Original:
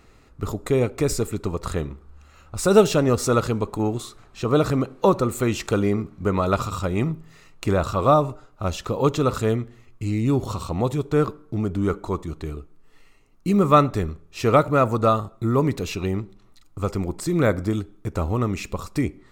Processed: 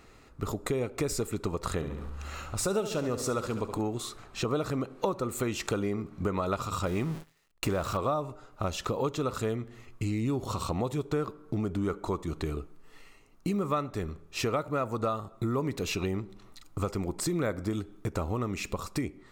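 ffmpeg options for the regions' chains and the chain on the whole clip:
ffmpeg -i in.wav -filter_complex "[0:a]asettb=1/sr,asplit=3[link_01][link_02][link_03];[link_01]atrim=end=1.744[link_04];[link_02]atrim=start=1.74:end=3.81,asetpts=PTS-STARTPTS,afade=type=in:duration=0.004:curve=qsin,afade=type=out:start_time=2.066:duration=0.004:curve=qsin,acompressor=mode=upward:threshold=-27dB:ratio=2.5:attack=3.2:release=140:knee=2.83:detection=peak,aecho=1:1:69|138|207|276|345|414:0.266|0.138|0.0719|0.0374|0.0195|0.0101,atrim=end_sample=91287[link_05];[link_03]atrim=start=3.806[link_06];[link_04][link_05]acrossfade=duration=0.004:curve1=hsin:curve2=qsin[link_07];[link_07][link_06]acrossfade=duration=0.004:curve1=qsin:curve2=hsin,asettb=1/sr,asplit=3[link_08][link_09][link_10];[link_08]atrim=end=6.864[link_11];[link_09]atrim=start=6.86:end=7.97,asetpts=PTS-STARTPTS,afade=type=in:duration=0.004:curve=qsin,afade=type=out:start_time=1.106:duration=0.004:curve=qsin,aeval=exprs='val(0)+0.5*0.0266*sgn(val(0))':channel_layout=same,agate=range=-38dB:threshold=-33dB:ratio=16:release=100:detection=peak[link_12];[link_10]atrim=start=7.966[link_13];[link_11][link_12]acrossfade=duration=0.004:curve1=hsin:curve2=qsin[link_14];[link_14][link_13]acrossfade=duration=0.004:curve1=qsin:curve2=hsin,dynaudnorm=framelen=210:gausssize=9:maxgain=6dB,lowshelf=frequency=180:gain=-5,acompressor=threshold=-29dB:ratio=4" out.wav

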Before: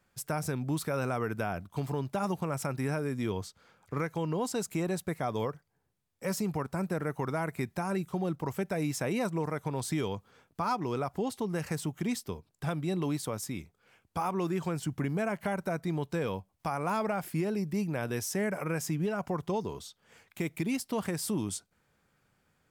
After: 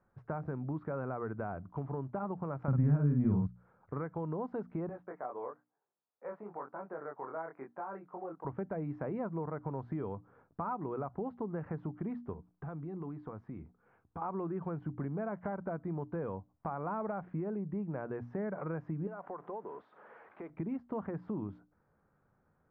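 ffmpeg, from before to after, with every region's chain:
ffmpeg -i in.wav -filter_complex "[0:a]asettb=1/sr,asplit=3[link_01][link_02][link_03];[link_01]atrim=end=2.684[link_04];[link_02]atrim=start=2.68:end=3.47,asetpts=PTS-STARTPTS,afade=type=in:duration=0.004:curve=qsin,afade=type=out:start_time=0.786:duration=0.004:curve=qsin,lowshelf=frequency=290:width_type=q:width=1.5:gain=12,acontrast=90,asplit=2[link_05][link_06];[link_06]adelay=48,volume=-4dB[link_07];[link_05][link_07]amix=inputs=2:normalize=0,atrim=end_sample=34839[link_08];[link_03]atrim=start=3.466[link_09];[link_04][link_08]acrossfade=duration=0.004:curve1=hsin:curve2=qsin[link_10];[link_10][link_09]acrossfade=duration=0.004:curve1=qsin:curve2=hsin,asettb=1/sr,asplit=3[link_11][link_12][link_13];[link_11]atrim=end=4.894[link_14];[link_12]atrim=start=4.89:end=8.45,asetpts=PTS-STARTPTS,afade=type=in:duration=0.004:curve=qsin,afade=type=out:start_time=3.556:duration=0.004:curve=qsin,highpass=500,lowpass=2400,flanger=delay=19.5:depth=5.3:speed=1[link_15];[link_13]atrim=start=8.446[link_16];[link_14][link_15]acrossfade=duration=0.004:curve1=hsin:curve2=qsin[link_17];[link_17][link_16]acrossfade=duration=0.004:curve1=qsin:curve2=hsin,asettb=1/sr,asplit=3[link_18][link_19][link_20];[link_18]atrim=end=12.334[link_21];[link_19]atrim=start=12.33:end=14.22,asetpts=PTS-STARTPTS,afade=type=in:duration=0.004:curve=qsin,afade=type=out:start_time=1.886:duration=0.004:curve=qsin,acompressor=threshold=-39dB:ratio=3:attack=3.2:release=140:knee=1:detection=peak,bandreject=frequency=580:width=7.7[link_22];[link_20]atrim=start=14.216[link_23];[link_21][link_22]acrossfade=duration=0.004:curve1=hsin:curve2=qsin[link_24];[link_24][link_23]acrossfade=duration=0.004:curve1=qsin:curve2=hsin,asettb=1/sr,asplit=3[link_25][link_26][link_27];[link_25]atrim=end=19.074[link_28];[link_26]atrim=start=19.07:end=20.5,asetpts=PTS-STARTPTS,afade=type=in:duration=0.004:curve=qsin,afade=type=out:start_time=1.426:duration=0.004:curve=qsin,aeval=exprs='val(0)+0.5*0.00531*sgn(val(0))':channel_layout=same,highpass=440,lowpass=7400,acompressor=threshold=-41dB:ratio=2:attack=3.2:release=140:knee=1:detection=peak[link_29];[link_27]atrim=start=20.496[link_30];[link_28][link_29]acrossfade=duration=0.004:curve1=hsin:curve2=qsin[link_31];[link_31][link_30]acrossfade=duration=0.004:curve1=qsin:curve2=hsin,lowpass=frequency=1400:width=0.5412,lowpass=frequency=1400:width=1.3066,bandreject=frequency=60:width_type=h:width=6,bandreject=frequency=120:width_type=h:width=6,bandreject=frequency=180:width_type=h:width=6,bandreject=frequency=240:width_type=h:width=6,bandreject=frequency=300:width_type=h:width=6,acompressor=threshold=-38dB:ratio=2" out.wav

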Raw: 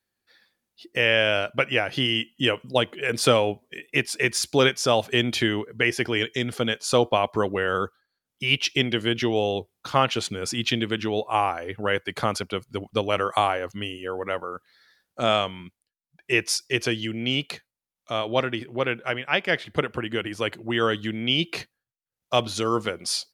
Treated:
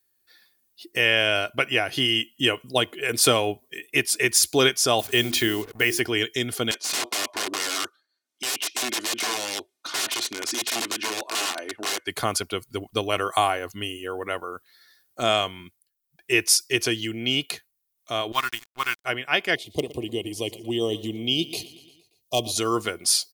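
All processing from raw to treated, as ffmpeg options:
ffmpeg -i in.wav -filter_complex "[0:a]asettb=1/sr,asplit=3[link_01][link_02][link_03];[link_01]atrim=end=4.994[link_04];[link_02]atrim=start=4.99:end=6,asetpts=PTS-STARTPTS,afade=type=in:duration=0.004:curve=qsin,afade=type=out:start_time=1.006:duration=0.004:curve=qsin,bandreject=frequency=50:width_type=h:width=6,bandreject=frequency=100:width_type=h:width=6,bandreject=frequency=150:width_type=h:width=6,bandreject=frequency=200:width_type=h:width=6,bandreject=frequency=250:width_type=h:width=6,bandreject=frequency=300:width_type=h:width=6,bandreject=frequency=350:width_type=h:width=6,acrusher=bits=6:mix=0:aa=0.5[link_05];[link_03]atrim=start=5.996[link_06];[link_04][link_05]acrossfade=duration=0.004:curve1=hsin:curve2=qsin[link_07];[link_07][link_06]acrossfade=duration=0.004:curve1=qsin:curve2=hsin,asettb=1/sr,asplit=3[link_08][link_09][link_10];[link_08]atrim=end=6.714[link_11];[link_09]atrim=start=6.71:end=12.07,asetpts=PTS-STARTPTS,afade=type=in:duration=0.004:curve=qsin,afade=type=out:start_time=5.356:duration=0.004:curve=qsin,aecho=1:1:3.3:0.54,atrim=end_sample=236376,aeval=exprs='(mod(11.9*val(0)+1,2)-1)/11.9':channel_layout=same,highpass=280,lowpass=6200[link_12];[link_10]atrim=start=12.066[link_13];[link_11][link_12]acrossfade=duration=0.004:curve1=hsin:curve2=qsin[link_14];[link_14][link_13]acrossfade=duration=0.004:curve1=qsin:curve2=hsin,asettb=1/sr,asplit=3[link_15][link_16][link_17];[link_15]atrim=end=18.324[link_18];[link_16]atrim=start=18.32:end=19.05,asetpts=PTS-STARTPTS,afade=type=in:duration=0.004:curve=qsin,afade=type=out:start_time=0.726:duration=0.004:curve=qsin,lowshelf=frequency=760:width_type=q:width=3:gain=-10.5,aeval=exprs='sgn(val(0))*max(abs(val(0))-0.0106,0)':channel_layout=same[link_19];[link_17]atrim=start=19.046[link_20];[link_18][link_19]acrossfade=duration=0.004:curve1=hsin:curve2=qsin[link_21];[link_21][link_20]acrossfade=duration=0.004:curve1=qsin:curve2=hsin,asettb=1/sr,asplit=3[link_22][link_23][link_24];[link_22]atrim=end=19.554[link_25];[link_23]atrim=start=19.55:end=22.58,asetpts=PTS-STARTPTS,afade=type=in:duration=0.004:curve=qsin,afade=type=out:start_time=3.026:duration=0.004:curve=qsin,volume=9dB,asoftclip=hard,volume=-9dB,asuperstop=centerf=1500:order=4:qfactor=0.68,aecho=1:1:116|232|348|464|580:0.126|0.0755|0.0453|0.0272|0.0163,atrim=end_sample=133623[link_26];[link_24]atrim=start=22.576[link_27];[link_25][link_26]acrossfade=duration=0.004:curve1=hsin:curve2=qsin[link_28];[link_28][link_27]acrossfade=duration=0.004:curve1=qsin:curve2=hsin,aemphasis=mode=production:type=50fm,aecho=1:1:2.8:0.38,volume=-1dB" out.wav

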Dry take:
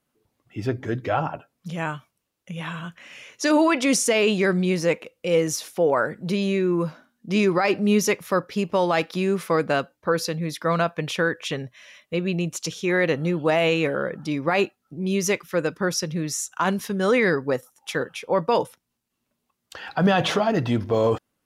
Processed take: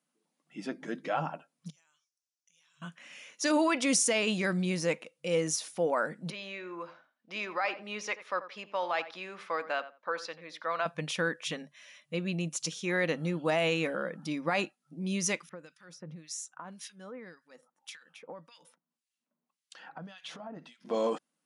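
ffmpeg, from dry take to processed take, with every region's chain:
ffmpeg -i in.wav -filter_complex "[0:a]asettb=1/sr,asplit=3[link_01][link_02][link_03];[link_01]atrim=end=1.704[link_04];[link_02]atrim=start=1.7:end=2.82,asetpts=PTS-STARTPTS,afade=type=in:duration=0.004:curve=qsin,afade=type=out:start_time=1.116:duration=0.004:curve=qsin,bandpass=frequency=5800:width_type=q:width=3.9,acompressor=threshold=-58dB:ratio=12:attack=3.2:release=140:knee=1:detection=peak[link_05];[link_03]atrim=start=2.816[link_06];[link_04][link_05]acrossfade=duration=0.004:curve1=hsin:curve2=qsin[link_07];[link_07][link_06]acrossfade=duration=0.004:curve1=qsin:curve2=hsin,asettb=1/sr,asplit=3[link_08][link_09][link_10];[link_08]atrim=end=6.304[link_11];[link_09]atrim=start=6.3:end=10.86,asetpts=PTS-STARTPTS,afade=type=in:duration=0.004:curve=qsin,afade=type=out:start_time=4.556:duration=0.004:curve=qsin,highpass=630,lowpass=3200,asplit=2[link_12][link_13];[link_13]adelay=86,lowpass=frequency=2000:poles=1,volume=-13.5dB,asplit=2[link_14][link_15];[link_15]adelay=86,lowpass=frequency=2000:poles=1,volume=0.18[link_16];[link_12][link_14][link_16]amix=inputs=3:normalize=0,atrim=end_sample=201096[link_17];[link_10]atrim=start=10.856[link_18];[link_11][link_17]acrossfade=duration=0.004:curve1=hsin:curve2=qsin[link_19];[link_19][link_18]acrossfade=duration=0.004:curve1=qsin:curve2=hsin,asettb=1/sr,asplit=3[link_20][link_21][link_22];[link_20]atrim=end=15.494[link_23];[link_21]atrim=start=15.49:end=20.85,asetpts=PTS-STARTPTS,afade=type=in:duration=0.004:curve=qsin,afade=type=out:start_time=5.356:duration=0.004:curve=qsin,highshelf=frequency=9200:gain=-8,acompressor=threshold=-30dB:ratio=12:attack=3.2:release=140:knee=1:detection=peak,acrossover=split=1700[link_24][link_25];[link_24]aeval=exprs='val(0)*(1-1/2+1/2*cos(2*PI*1.8*n/s))':channel_layout=same[link_26];[link_25]aeval=exprs='val(0)*(1-1/2-1/2*cos(2*PI*1.8*n/s))':channel_layout=same[link_27];[link_26][link_27]amix=inputs=2:normalize=0[link_28];[link_22]atrim=start=20.846[link_29];[link_23][link_28]acrossfade=duration=0.004:curve1=hsin:curve2=qsin[link_30];[link_30][link_29]acrossfade=duration=0.004:curve1=qsin:curve2=hsin,highshelf=frequency=5500:gain=7,afftfilt=real='re*between(b*sr/4096,140,11000)':imag='im*between(b*sr/4096,140,11000)':win_size=4096:overlap=0.75,equalizer=frequency=400:width=6.6:gain=-9.5,volume=-7.5dB" out.wav

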